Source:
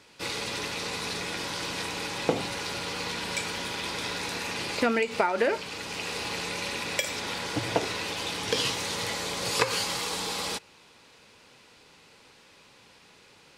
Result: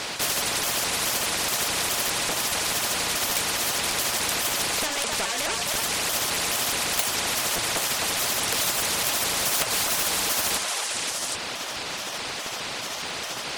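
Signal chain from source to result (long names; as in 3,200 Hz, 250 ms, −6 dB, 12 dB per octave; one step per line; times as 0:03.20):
pitch shifter gated in a rhythm +4 semitones, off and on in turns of 210 ms
reverb reduction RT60 0.78 s
in parallel at +1 dB: downward compressor, threshold −45 dBFS, peak gain reduction 23.5 dB
on the sum: soft clipping −22.5 dBFS, distortion −11 dB
parametric band 680 Hz +12.5 dB 0.67 octaves
echo through a band-pass that steps 259 ms, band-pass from 1,000 Hz, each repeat 1.4 octaves, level −2 dB
on a send at −14 dB: convolution reverb RT60 0.35 s, pre-delay 20 ms
on the sum: surface crackle 62 per second −55 dBFS
low-shelf EQ 410 Hz −7.5 dB
regular buffer underruns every 0.61 s repeat, from 0:00.85
every bin compressed towards the loudest bin 4 to 1
level +4.5 dB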